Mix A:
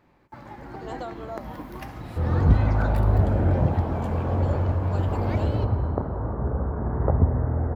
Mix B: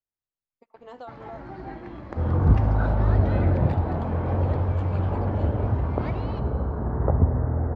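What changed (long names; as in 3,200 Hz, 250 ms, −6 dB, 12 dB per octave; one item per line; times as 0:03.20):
speech −4.5 dB
first sound: entry +0.75 s
master: add high-frequency loss of the air 130 metres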